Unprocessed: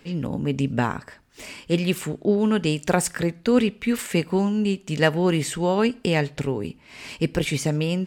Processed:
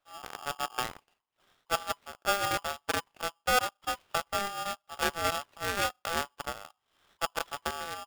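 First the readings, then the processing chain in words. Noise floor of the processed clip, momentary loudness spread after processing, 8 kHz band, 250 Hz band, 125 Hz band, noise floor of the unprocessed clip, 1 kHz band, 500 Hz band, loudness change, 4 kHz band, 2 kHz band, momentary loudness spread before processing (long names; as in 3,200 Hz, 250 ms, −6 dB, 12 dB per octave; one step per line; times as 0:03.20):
−82 dBFS, 10 LU, −5.5 dB, −24.0 dB, −23.0 dB, −53 dBFS, −0.5 dB, −13.0 dB, −9.0 dB, −3.0 dB, −4.0 dB, 9 LU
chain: variable-slope delta modulation 16 kbit/s
harmonic generator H 3 −27 dB, 7 −19 dB, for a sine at −7.5 dBFS
ring modulator with a square carrier 1,000 Hz
level −6.5 dB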